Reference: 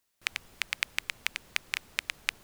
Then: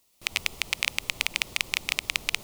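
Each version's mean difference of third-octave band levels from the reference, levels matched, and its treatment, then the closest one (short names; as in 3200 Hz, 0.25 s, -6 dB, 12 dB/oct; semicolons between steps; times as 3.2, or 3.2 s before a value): 6.0 dB: reverse delay 0.122 s, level -4 dB; bell 1600 Hz -14 dB 0.47 oct; maximiser +11.5 dB; gain -1 dB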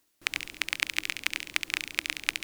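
4.5 dB: bell 310 Hz +14.5 dB 0.4 oct; reverse; upward compressor, threshold -31 dBFS; reverse; thin delay 69 ms, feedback 55%, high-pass 2200 Hz, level -5 dB; gain +2 dB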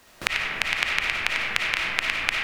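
8.0 dB: LPF 2200 Hz 6 dB/oct; digital reverb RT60 1.9 s, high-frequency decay 0.4×, pre-delay 15 ms, DRR -3.5 dB; three-band squash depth 70%; gain +8.5 dB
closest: second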